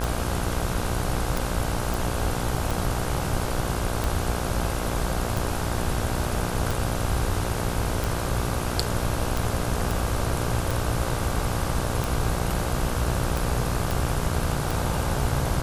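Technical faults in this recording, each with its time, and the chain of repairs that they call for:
buzz 60 Hz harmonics 27 -30 dBFS
tick 45 rpm
1.94 pop
9.91 pop
13.91 pop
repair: de-click; de-hum 60 Hz, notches 27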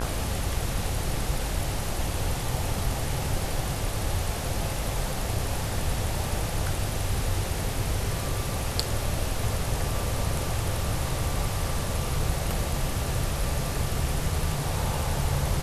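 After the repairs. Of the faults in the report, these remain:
9.91 pop

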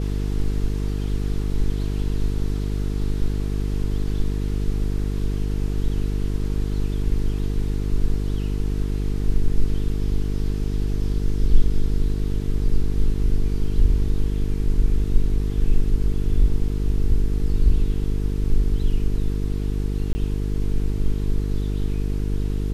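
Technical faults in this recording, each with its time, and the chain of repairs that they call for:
buzz 50 Hz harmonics 9 -24 dBFS
20.13–20.15 gap 20 ms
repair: de-hum 50 Hz, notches 9; interpolate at 20.13, 20 ms

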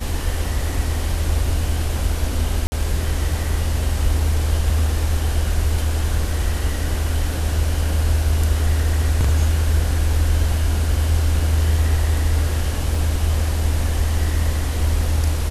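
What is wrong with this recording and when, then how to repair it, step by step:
2.67–2.72 gap 50 ms
12.95 gap 2.5 ms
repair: interpolate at 2.67, 50 ms; interpolate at 12.95, 2.5 ms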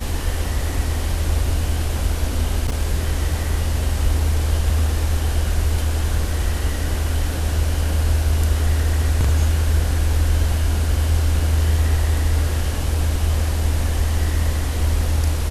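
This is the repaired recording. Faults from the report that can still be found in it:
none

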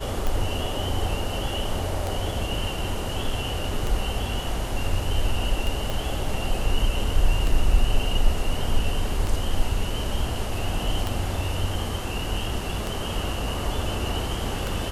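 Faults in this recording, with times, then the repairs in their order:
tick 33 1/3 rpm
5.9 pop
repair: de-click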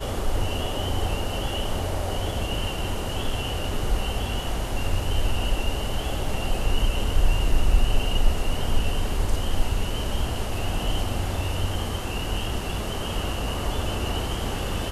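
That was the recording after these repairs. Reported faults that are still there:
5.9 pop

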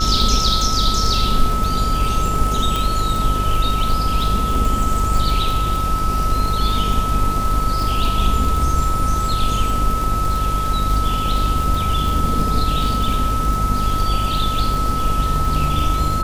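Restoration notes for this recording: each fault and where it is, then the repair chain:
buzz 50 Hz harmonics 26 -23 dBFS
crackle 53/s -21 dBFS
tone 1300 Hz -21 dBFS
2.76 pop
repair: de-click; de-hum 50 Hz, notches 26; notch 1300 Hz, Q 30

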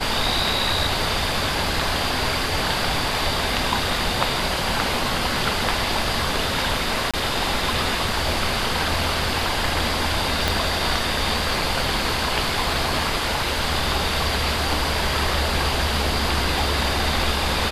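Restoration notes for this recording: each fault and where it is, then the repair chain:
7.11–7.14 gap 26 ms
10.48 pop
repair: de-click; interpolate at 7.11, 26 ms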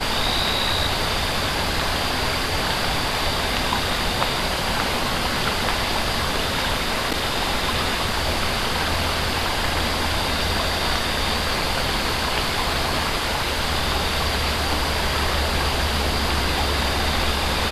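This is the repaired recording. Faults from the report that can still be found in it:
10.48 pop

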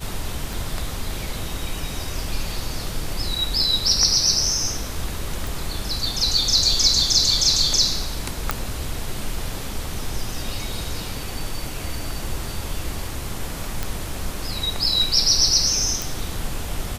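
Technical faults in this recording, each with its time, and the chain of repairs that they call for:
0.53 pop
5.47 pop
8.51 pop
13.83 pop
16.02 pop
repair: de-click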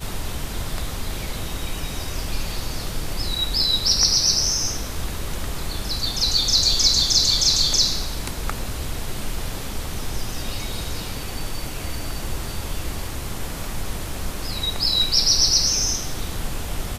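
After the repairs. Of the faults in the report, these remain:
none

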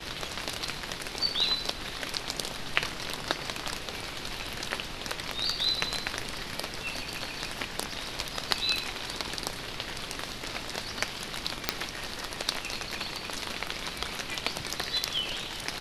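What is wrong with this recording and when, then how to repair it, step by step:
11.69 pop -6 dBFS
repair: de-click

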